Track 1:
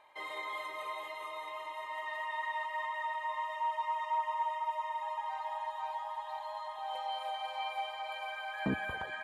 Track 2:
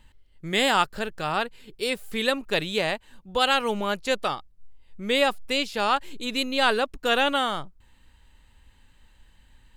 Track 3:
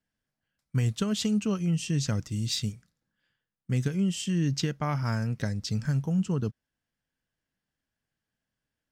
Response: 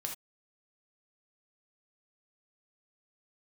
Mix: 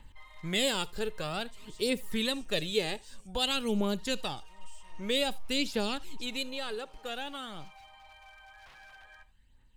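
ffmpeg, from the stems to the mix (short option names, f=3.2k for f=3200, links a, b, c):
-filter_complex "[0:a]aeval=exprs='0.0188*(abs(mod(val(0)/0.0188+3,4)-2)-1)':c=same,volume=-12.5dB,asplit=3[a][b][c];[a]atrim=end=2.41,asetpts=PTS-STARTPTS,afade=t=out:st=2.406:d=0.004:c=hsin[d];[b]atrim=start=2.41:end=3.98,asetpts=PTS-STARTPTS,volume=0[e];[c]atrim=start=3.98,asetpts=PTS-STARTPTS,afade=t=in:d=0.004:c=hsin[f];[d][e][f]concat=n=3:v=0:a=1,asplit=2[g][h];[h]volume=-10.5dB[i];[1:a]aphaser=in_gain=1:out_gain=1:delay=2.5:decay=0.47:speed=0.52:type=triangular,volume=-3.5dB,afade=t=out:st=6:d=0.64:silence=0.298538,asplit=2[j][k];[k]volume=-15dB[l];[2:a]equalizer=f=8.7k:t=o:w=0.33:g=12.5,asoftclip=type=tanh:threshold=-25dB,adelay=550,volume=-11dB[m];[g][m]amix=inputs=2:normalize=0,highpass=720,alimiter=level_in=24dB:limit=-24dB:level=0:latency=1:release=90,volume=-24dB,volume=0dB[n];[3:a]atrim=start_sample=2205[o];[i][l]amix=inputs=2:normalize=0[p];[p][o]afir=irnorm=-1:irlink=0[q];[j][n][q]amix=inputs=3:normalize=0,acrossover=split=450|3000[r][s][t];[s]acompressor=threshold=-41dB:ratio=4[u];[r][u][t]amix=inputs=3:normalize=0"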